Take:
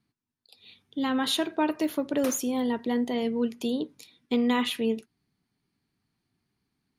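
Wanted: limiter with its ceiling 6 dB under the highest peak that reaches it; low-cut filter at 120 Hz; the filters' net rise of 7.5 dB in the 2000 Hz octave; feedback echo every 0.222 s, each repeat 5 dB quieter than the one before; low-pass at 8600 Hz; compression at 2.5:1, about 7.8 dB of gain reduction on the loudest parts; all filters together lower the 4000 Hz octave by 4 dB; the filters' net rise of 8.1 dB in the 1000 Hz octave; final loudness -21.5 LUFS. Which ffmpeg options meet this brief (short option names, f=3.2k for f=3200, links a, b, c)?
-af "highpass=120,lowpass=8.6k,equalizer=f=1k:t=o:g=8,equalizer=f=2k:t=o:g=8.5,equalizer=f=4k:t=o:g=-9,acompressor=threshold=-27dB:ratio=2.5,alimiter=limit=-21dB:level=0:latency=1,aecho=1:1:222|444|666|888|1110|1332|1554:0.562|0.315|0.176|0.0988|0.0553|0.031|0.0173,volume=9dB"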